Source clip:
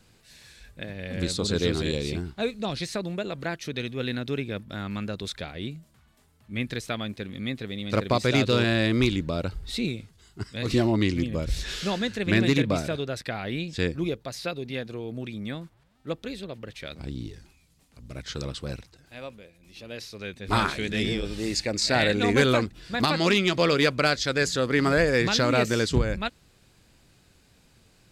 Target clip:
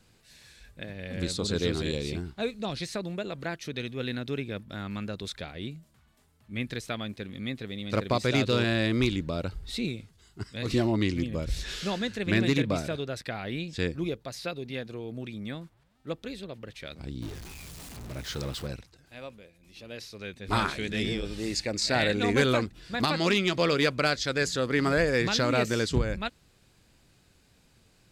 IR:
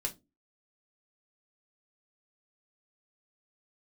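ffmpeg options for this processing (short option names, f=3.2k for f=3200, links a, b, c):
-filter_complex "[0:a]asettb=1/sr,asplit=3[a][b][c];[a]atrim=end=17.224[d];[b]atrim=start=17.22:end=18.67,asetpts=PTS-STARTPTS,afade=t=in:d=0.004:c=qsin,afade=t=out:st=1.446:d=0.004:c=qsin,aeval=exprs='val(0)+0.5*0.0168*sgn(val(0))':c=same[e];[c]atrim=start=18.666[f];[d][e]acrossfade=d=0.004:c1=hsin:c2=qsin[g];[g][f]acrossfade=d=0.004:c1=qsin:c2=hsin,volume=-3dB"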